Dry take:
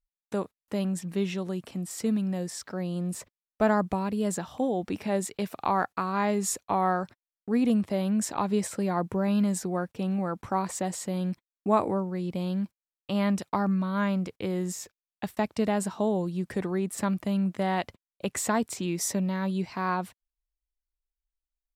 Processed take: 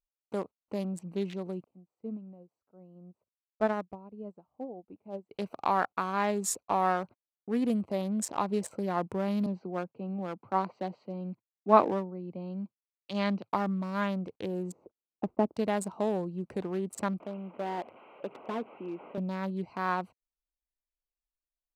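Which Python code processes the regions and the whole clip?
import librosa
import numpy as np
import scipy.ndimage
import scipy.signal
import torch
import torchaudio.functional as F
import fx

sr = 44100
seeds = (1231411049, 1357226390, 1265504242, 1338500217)

y = fx.chain(x, sr, fx.lowpass(hz=1500.0, slope=6),
    fx.upward_expand(threshold_db=-37.0, expansion=2.5), at=(1.64, 5.31))
y = fx.chain(y, sr, fx.cheby1_bandpass(low_hz=110.0, high_hz=4700.0, order=4),
    fx.band_widen(depth_pct=70), at=(9.46, 13.53))
y = fx.chain(y, sr, fx.lowpass(hz=1000.0, slope=12),
    fx.peak_eq(hz=310.0, db=8.5, octaves=1.6), at=(14.72, 15.56))
y = fx.chain(y, sr, fx.delta_mod(bps=16000, step_db=-38.0),
    fx.highpass(hz=320.0, slope=12), at=(17.2, 19.18))
y = fx.wiener(y, sr, points=25)
y = fx.low_shelf(y, sr, hz=230.0, db=-9.5)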